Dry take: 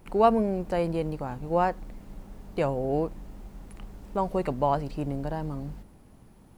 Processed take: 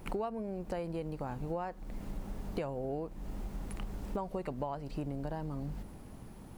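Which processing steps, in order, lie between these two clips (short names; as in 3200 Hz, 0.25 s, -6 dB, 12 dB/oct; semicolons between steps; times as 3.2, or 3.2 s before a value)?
compressor 16:1, threshold -38 dBFS, peak gain reduction 24 dB; gain +4.5 dB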